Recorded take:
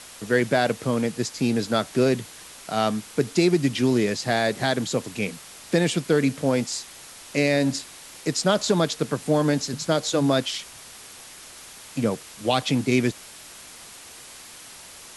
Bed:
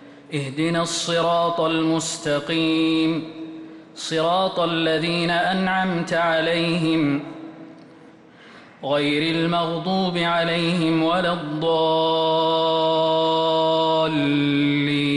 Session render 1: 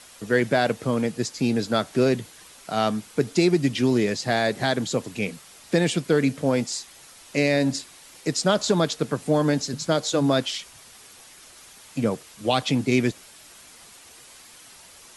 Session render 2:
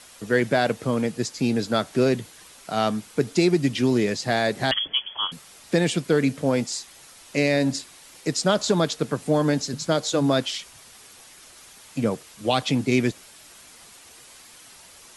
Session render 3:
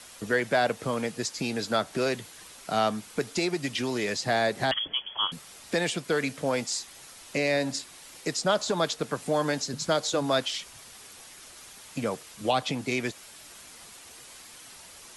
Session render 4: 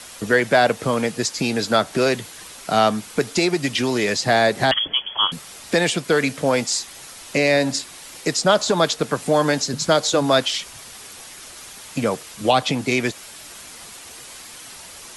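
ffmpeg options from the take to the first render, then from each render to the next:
-af "afftdn=nr=6:nf=-44"
-filter_complex "[0:a]asettb=1/sr,asplit=3[a][b][c];[a]atrim=end=4.714[d];[b]atrim=start=4.71:end=5.32,asetpts=PTS-STARTPTS,afade=t=in:d=0.004:c=qsin,afade=t=out:st=0.606:d=0.004:c=qsin,lowpass=f=3k:t=q:w=0.5098,lowpass=f=3k:t=q:w=0.6013,lowpass=f=3k:t=q:w=0.9,lowpass=f=3k:t=q:w=2.563,afreqshift=-3500[e];[c]atrim=start=5.316[f];[d][e]acrossfade=d=0.004:c1=hsin:c2=qsin[g];[g][f]acrossfade=d=0.004:c1=qsin:c2=hsin"
-filter_complex "[0:a]acrossover=split=550|1200[a][b][c];[a]acompressor=threshold=-31dB:ratio=6[d];[c]alimiter=limit=-19.5dB:level=0:latency=1:release=260[e];[d][b][e]amix=inputs=3:normalize=0"
-af "volume=8.5dB"

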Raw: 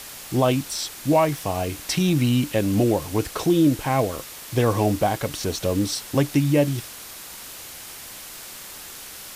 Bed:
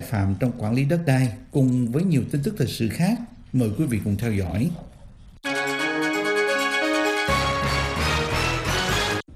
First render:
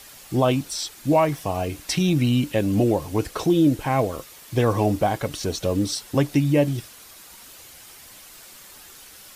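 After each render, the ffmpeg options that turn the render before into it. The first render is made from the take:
-af "afftdn=nr=8:nf=-39"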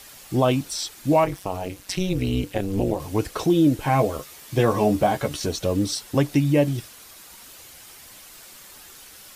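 -filter_complex "[0:a]asettb=1/sr,asplit=3[a][b][c];[a]atrim=end=1.244[d];[b]atrim=start=1.24:end=3,asetpts=PTS-STARTPTS,afade=t=in:d=0.004:c=qsin,afade=t=out:st=1.756:d=0.004:c=qsin,tremolo=f=190:d=0.919[e];[c]atrim=start=2.996[f];[d][e]acrossfade=d=0.004:c1=hsin:c2=qsin[g];[g][f]acrossfade=d=0.004:c1=qsin:c2=hsin,asettb=1/sr,asplit=3[h][i][j];[h]atrim=end=3.814[k];[i]atrim=start=3.81:end=5.48,asetpts=PTS-STARTPTS,afade=t=in:d=0.004:c=qsin,afade=t=out:st=1.666:d=0.004:c=qsin,asplit=2[l][m];[m]adelay=14,volume=-5dB[n];[l][n]amix=inputs=2:normalize=0,atrim=end_sample=73647[o];[j]atrim=start=5.476[p];[k][o]acrossfade=d=0.004:c1=hsin:c2=qsin[q];[q][p]acrossfade=d=0.004:c1=qsin:c2=hsin"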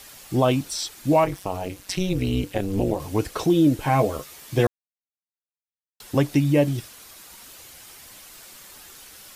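-filter_complex "[0:a]asplit=3[a][b][c];[a]atrim=end=4.67,asetpts=PTS-STARTPTS,afade=t=out:st=4.666:d=0.004:c=hsin[d];[b]atrim=start=4.67:end=6,asetpts=PTS-STARTPTS,volume=0[e];[c]atrim=start=6,asetpts=PTS-STARTPTS,afade=t=in:d=0.004:c=hsin[f];[d][e][f]concat=n=3:v=0:a=1"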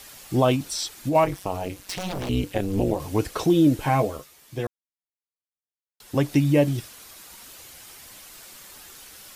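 -filter_complex "[0:a]asplit=3[a][b][c];[a]afade=t=out:st=0.55:d=0.02[d];[b]acompressor=threshold=-21dB:ratio=6:attack=3.2:release=140:knee=1:detection=peak,afade=t=in:st=0.55:d=0.02,afade=t=out:st=1.14:d=0.02[e];[c]afade=t=in:st=1.14:d=0.02[f];[d][e][f]amix=inputs=3:normalize=0,asettb=1/sr,asplit=3[g][h][i];[g]atrim=end=1.724[j];[h]atrim=start=1.72:end=2.29,asetpts=PTS-STARTPTS,afade=t=in:d=0.004:c=qsin,afade=t=out:st=0.566:d=0.004:c=qsin,aeval=exprs='0.0631*(abs(mod(val(0)/0.0631+3,4)-2)-1)':c=same[k];[i]atrim=start=2.286[l];[j][k]acrossfade=d=0.004:c1=hsin:c2=qsin[m];[m][l]acrossfade=d=0.004:c1=qsin:c2=hsin,asplit=3[n][o][p];[n]atrim=end=4.32,asetpts=PTS-STARTPTS,afade=t=out:st=3.85:d=0.47:silence=0.334965[q];[o]atrim=start=4.32:end=5.87,asetpts=PTS-STARTPTS,volume=-9.5dB[r];[p]atrim=start=5.87,asetpts=PTS-STARTPTS,afade=t=in:d=0.47:silence=0.334965[s];[q][r][s]concat=n=3:v=0:a=1"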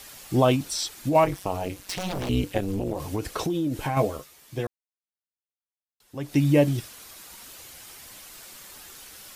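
-filter_complex "[0:a]asettb=1/sr,asplit=3[a][b][c];[a]atrim=end=2.594[d];[b]atrim=start=2.59:end=3.97,asetpts=PTS-STARTPTS,afade=t=in:d=0.004:c=qsin,afade=t=out:st=1.376:d=0.004:c=qsin,acompressor=threshold=-23dB:ratio=6:attack=3.2:release=140:knee=1:detection=peak[e];[c]atrim=start=3.966[f];[d][e]acrossfade=d=0.004:c1=hsin:c2=qsin[g];[g][f]acrossfade=d=0.004:c1=qsin:c2=hsin,asplit=3[h][i][j];[h]atrim=end=4.84,asetpts=PTS-STARTPTS,afade=t=out:st=4.59:d=0.25:silence=0.223872[k];[i]atrim=start=4.84:end=6.19,asetpts=PTS-STARTPTS,volume=-13dB[l];[j]atrim=start=6.19,asetpts=PTS-STARTPTS,afade=t=in:d=0.25:silence=0.223872[m];[k][l][m]concat=n=3:v=0:a=1"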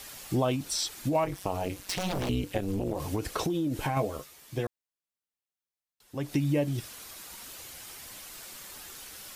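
-af "acompressor=threshold=-27dB:ratio=2.5"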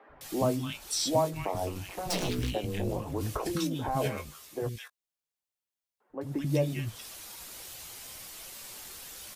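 -filter_complex "[0:a]asplit=2[a][b];[b]adelay=19,volume=-10.5dB[c];[a][c]amix=inputs=2:normalize=0,acrossover=split=250|1500[d][e][f];[d]adelay=90[g];[f]adelay=210[h];[g][e][h]amix=inputs=3:normalize=0"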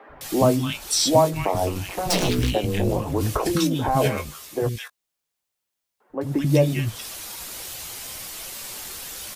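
-af "volume=9.5dB"

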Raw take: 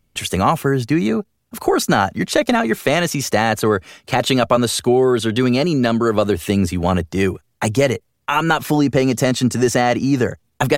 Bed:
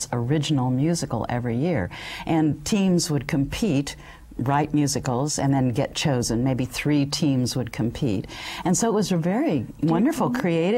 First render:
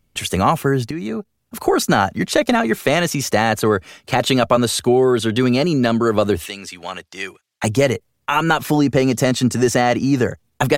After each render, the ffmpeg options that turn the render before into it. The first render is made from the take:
-filter_complex "[0:a]asettb=1/sr,asplit=3[a][b][c];[a]atrim=end=6.464[d];[b]atrim=start=6.46:end=7.64,asetpts=PTS-STARTPTS,afade=t=in:d=0.004:c=qsin,afade=t=out:st=1.176:d=0.004:c=qsin,bandpass=f=3.7k:t=q:w=0.63[e];[c]atrim=start=7.636[f];[d][e]acrossfade=d=0.004:c1=hsin:c2=qsin[g];[g][f]acrossfade=d=0.004:c1=qsin:c2=hsin,asplit=2[h][i];[h]atrim=end=0.91,asetpts=PTS-STARTPTS,afade=t=out:st=0.906:d=0.004:c=hsin:silence=0.251189[j];[i]atrim=start=0.91,asetpts=PTS-STARTPTS,afade=t=in:d=0.65:silence=0.251189[k];[j][k]concat=n=2:v=0:a=1"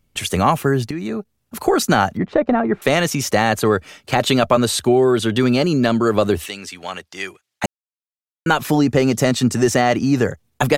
-filter_complex "[0:a]asettb=1/sr,asplit=3[a][b][c];[a]atrim=end=2.174[d];[b]atrim=start=2.17:end=2.82,asetpts=PTS-STARTPTS,afade=t=in:d=0.004:c=qsin,afade=t=out:st=0.646:d=0.004:c=qsin,lowpass=1.2k[e];[c]atrim=start=2.816[f];[d][e]acrossfade=d=0.004:c1=hsin:c2=qsin[g];[g][f]acrossfade=d=0.004:c1=qsin:c2=hsin,asplit=3[h][i][j];[h]atrim=end=7.66,asetpts=PTS-STARTPTS,afade=t=out:st=7.656:d=0.004:c=hsin[k];[i]atrim=start=7.66:end=8.46,asetpts=PTS-STARTPTS,volume=0[l];[j]atrim=start=8.46,asetpts=PTS-STARTPTS,afade=t=in:d=0.004:c=hsin[m];[k][l][m]concat=n=3:v=0:a=1"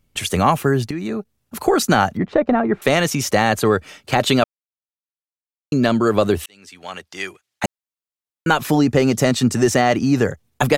-filter_complex "[0:a]asplit=4[a][b][c][d];[a]atrim=end=4.44,asetpts=PTS-STARTPTS,afade=t=out:st=4.436:d=0.004:c=hsin[e];[b]atrim=start=4.44:end=5.72,asetpts=PTS-STARTPTS,volume=0[f];[c]atrim=start=5.72:end=6.46,asetpts=PTS-STARTPTS,afade=t=in:d=0.004:c=hsin,afade=t=out:st=0.736:d=0.004:c=hsin[g];[d]atrim=start=6.46,asetpts=PTS-STARTPTS,afade=t=in:d=0.65[h];[e][f][g][h]concat=n=4:v=0:a=1"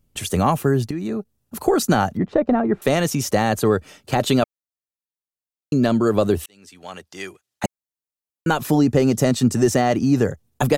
-af "equalizer=f=2.2k:w=0.42:g=-6.5,bandreject=f=2.2k:w=23"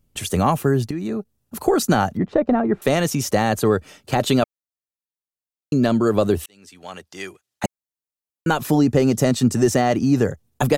-af anull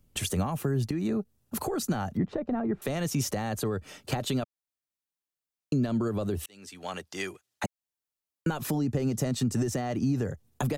-filter_complex "[0:a]alimiter=limit=-15.5dB:level=0:latency=1:release=250,acrossover=split=190[a][b];[b]acompressor=threshold=-29dB:ratio=6[c];[a][c]amix=inputs=2:normalize=0"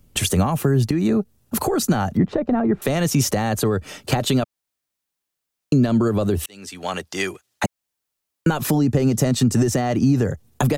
-af "volume=10dB"

